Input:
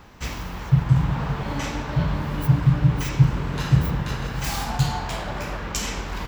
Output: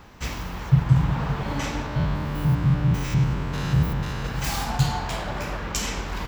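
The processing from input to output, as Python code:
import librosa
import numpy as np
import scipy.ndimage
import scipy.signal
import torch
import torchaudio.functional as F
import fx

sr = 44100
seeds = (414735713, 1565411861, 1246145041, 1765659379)

y = fx.spec_steps(x, sr, hold_ms=100, at=(1.86, 4.25))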